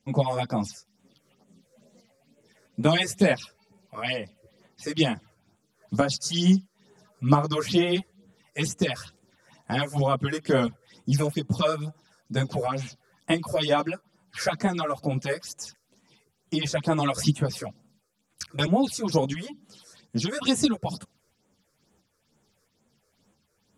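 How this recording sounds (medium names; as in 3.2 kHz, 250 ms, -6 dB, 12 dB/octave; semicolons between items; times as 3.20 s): phasing stages 6, 2.2 Hz, lowest notch 200–5000 Hz; tremolo saw up 1.5 Hz, depth 45%; a shimmering, thickened sound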